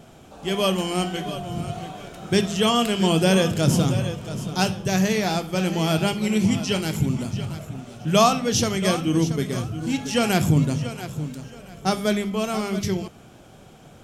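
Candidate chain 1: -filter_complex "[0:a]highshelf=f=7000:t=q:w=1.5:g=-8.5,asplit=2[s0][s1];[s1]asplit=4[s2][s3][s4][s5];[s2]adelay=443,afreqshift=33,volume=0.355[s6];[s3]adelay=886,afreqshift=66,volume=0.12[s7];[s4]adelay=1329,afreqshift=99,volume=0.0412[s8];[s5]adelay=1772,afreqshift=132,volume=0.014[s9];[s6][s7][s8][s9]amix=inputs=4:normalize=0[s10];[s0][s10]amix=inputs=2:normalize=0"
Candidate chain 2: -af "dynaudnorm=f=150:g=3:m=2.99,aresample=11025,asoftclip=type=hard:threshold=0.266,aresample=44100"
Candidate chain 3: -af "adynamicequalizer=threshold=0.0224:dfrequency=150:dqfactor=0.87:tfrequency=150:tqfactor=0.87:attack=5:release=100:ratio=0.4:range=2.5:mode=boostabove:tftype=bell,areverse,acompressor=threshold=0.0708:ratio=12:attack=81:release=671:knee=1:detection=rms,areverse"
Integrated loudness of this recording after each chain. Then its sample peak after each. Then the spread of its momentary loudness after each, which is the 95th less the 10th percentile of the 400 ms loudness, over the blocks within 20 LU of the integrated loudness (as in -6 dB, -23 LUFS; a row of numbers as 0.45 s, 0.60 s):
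-22.0 LUFS, -18.5 LUFS, -27.5 LUFS; -5.0 dBFS, -8.5 dBFS, -12.0 dBFS; 13 LU, 7 LU, 7 LU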